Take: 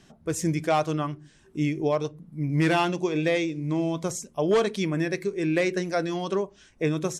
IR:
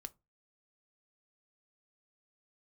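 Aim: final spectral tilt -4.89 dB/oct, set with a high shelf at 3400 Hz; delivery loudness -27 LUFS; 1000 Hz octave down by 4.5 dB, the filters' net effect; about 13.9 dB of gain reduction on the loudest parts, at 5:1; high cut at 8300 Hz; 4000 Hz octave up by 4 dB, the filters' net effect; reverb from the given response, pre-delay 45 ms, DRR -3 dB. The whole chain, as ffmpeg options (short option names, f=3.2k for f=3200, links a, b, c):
-filter_complex "[0:a]lowpass=8.3k,equalizer=f=1k:t=o:g=-7,highshelf=f=3.4k:g=3.5,equalizer=f=4k:t=o:g=3.5,acompressor=threshold=-35dB:ratio=5,asplit=2[a][b];[1:a]atrim=start_sample=2205,adelay=45[c];[b][c]afir=irnorm=-1:irlink=0,volume=8.5dB[d];[a][d]amix=inputs=2:normalize=0,volume=6.5dB"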